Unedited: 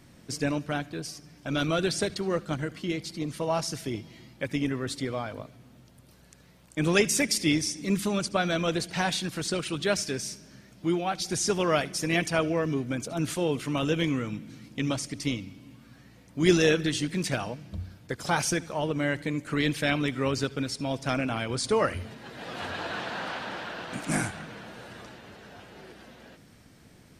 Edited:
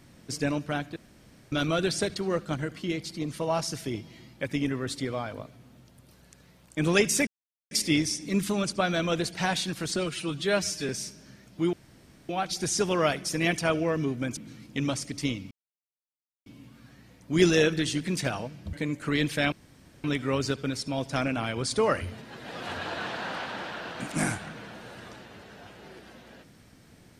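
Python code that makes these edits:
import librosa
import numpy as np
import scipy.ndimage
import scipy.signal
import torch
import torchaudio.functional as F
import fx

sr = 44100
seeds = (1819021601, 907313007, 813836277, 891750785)

y = fx.edit(x, sr, fx.room_tone_fill(start_s=0.96, length_s=0.56),
    fx.insert_silence(at_s=7.27, length_s=0.44),
    fx.stretch_span(start_s=9.52, length_s=0.62, factor=1.5),
    fx.insert_room_tone(at_s=10.98, length_s=0.56),
    fx.cut(start_s=13.06, length_s=1.33),
    fx.insert_silence(at_s=15.53, length_s=0.95),
    fx.cut(start_s=17.8, length_s=1.38),
    fx.insert_room_tone(at_s=19.97, length_s=0.52), tone=tone)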